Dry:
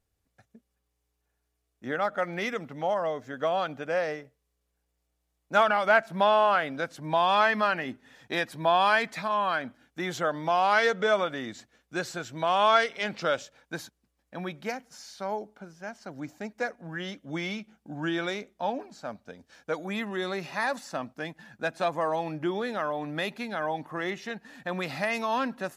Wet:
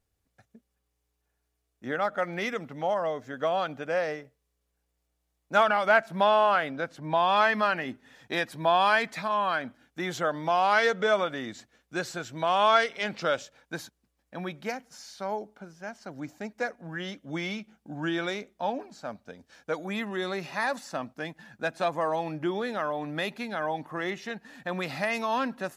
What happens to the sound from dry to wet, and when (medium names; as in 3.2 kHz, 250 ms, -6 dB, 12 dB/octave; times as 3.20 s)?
6.70–7.35 s: treble shelf 3.8 kHz -> 7.1 kHz -9.5 dB